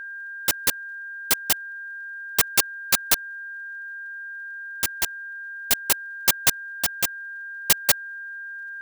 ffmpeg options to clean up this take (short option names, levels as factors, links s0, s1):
-af "adeclick=t=4,bandreject=f=1600:w=30"